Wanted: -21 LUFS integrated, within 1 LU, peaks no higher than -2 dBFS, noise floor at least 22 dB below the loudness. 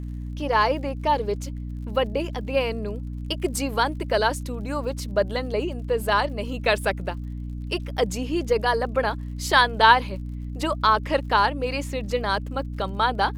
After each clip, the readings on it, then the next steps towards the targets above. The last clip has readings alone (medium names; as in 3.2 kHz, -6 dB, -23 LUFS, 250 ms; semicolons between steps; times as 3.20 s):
tick rate 44 per s; hum 60 Hz; highest harmonic 300 Hz; hum level -30 dBFS; loudness -24.0 LUFS; peak level -2.5 dBFS; loudness target -21.0 LUFS
-> de-click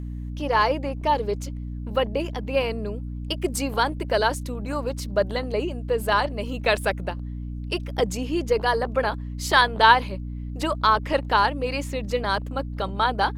tick rate 1.6 per s; hum 60 Hz; highest harmonic 300 Hz; hum level -30 dBFS
-> de-hum 60 Hz, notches 5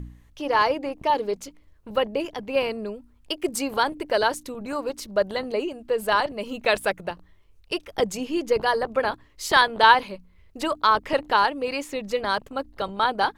hum not found; loudness -24.5 LUFS; peak level -3.0 dBFS; loudness target -21.0 LUFS
-> trim +3.5 dB; peak limiter -2 dBFS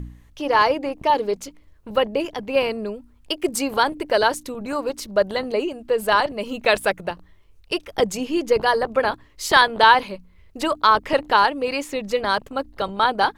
loudness -21.0 LUFS; peak level -2.0 dBFS; noise floor -52 dBFS